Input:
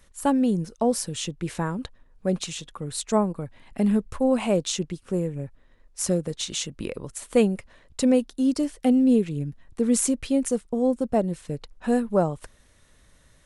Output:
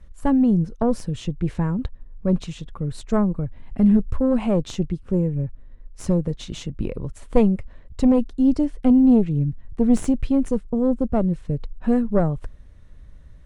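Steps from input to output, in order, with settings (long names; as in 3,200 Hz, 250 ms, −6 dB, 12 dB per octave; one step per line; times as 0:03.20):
harmonic generator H 2 −8 dB, 8 −42 dB, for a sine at −8 dBFS
RIAA equalisation playback
level −1.5 dB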